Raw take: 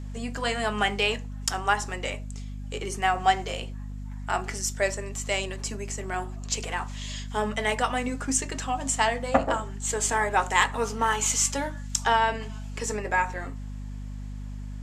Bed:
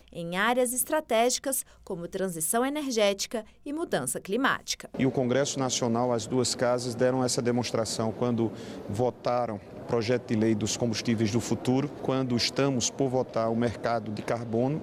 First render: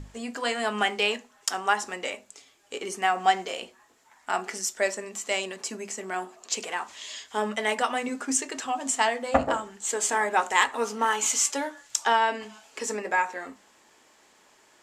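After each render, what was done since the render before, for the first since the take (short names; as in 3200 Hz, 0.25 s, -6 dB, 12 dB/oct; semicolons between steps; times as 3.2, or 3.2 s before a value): notches 50/100/150/200/250 Hz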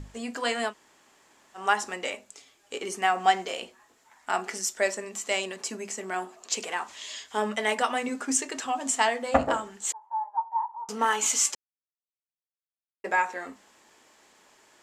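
0.69–1.59 room tone, crossfade 0.10 s; 9.92–10.89 Butterworth band-pass 910 Hz, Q 7.7; 11.55–13.04 mute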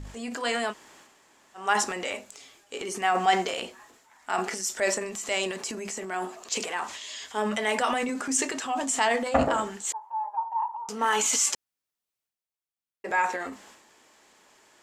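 transient shaper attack -2 dB, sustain +8 dB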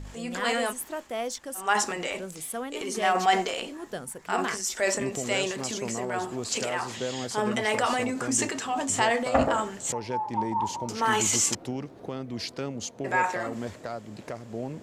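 add bed -8 dB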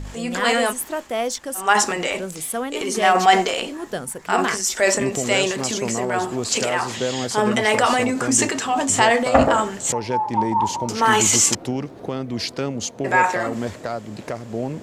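gain +8 dB; limiter -2 dBFS, peak gain reduction 1 dB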